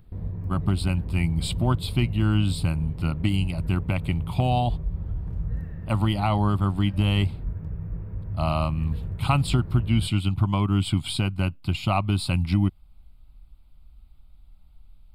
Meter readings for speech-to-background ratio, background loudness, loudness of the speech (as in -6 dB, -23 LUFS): 9.0 dB, -34.0 LUFS, -25.0 LUFS